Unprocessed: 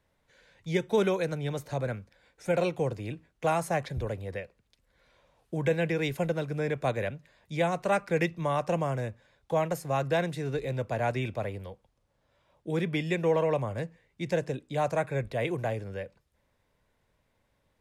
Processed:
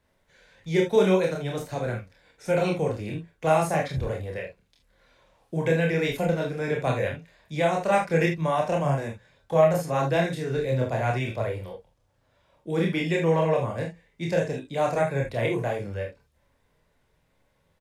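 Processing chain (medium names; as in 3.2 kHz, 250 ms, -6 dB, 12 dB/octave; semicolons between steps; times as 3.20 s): chorus voices 4, 0.38 Hz, delay 28 ms, depth 4.1 ms; early reflections 43 ms -7 dB, 54 ms -11 dB; trim +6 dB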